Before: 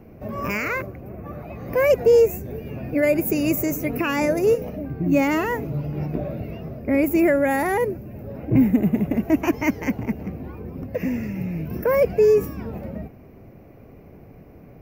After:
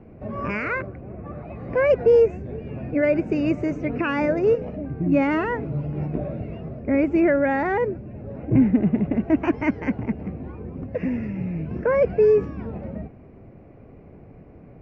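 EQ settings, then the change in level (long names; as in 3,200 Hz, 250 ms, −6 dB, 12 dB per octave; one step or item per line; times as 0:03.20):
Butterworth low-pass 9,300 Hz 96 dB per octave
dynamic equaliser 1,500 Hz, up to +5 dB, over −47 dBFS, Q 5.1
high-frequency loss of the air 300 metres
0.0 dB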